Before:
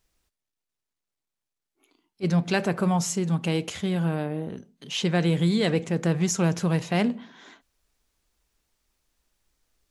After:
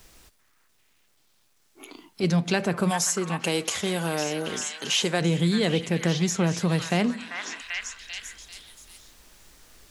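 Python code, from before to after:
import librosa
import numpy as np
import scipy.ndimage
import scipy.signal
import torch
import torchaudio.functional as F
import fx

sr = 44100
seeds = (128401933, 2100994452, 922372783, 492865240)

y = fx.bass_treble(x, sr, bass_db=-14, treble_db=14, at=(2.89, 5.2), fade=0.02)
y = fx.echo_stepped(y, sr, ms=391, hz=1500.0, octaves=0.7, feedback_pct=70, wet_db=-6)
y = fx.band_squash(y, sr, depth_pct=70)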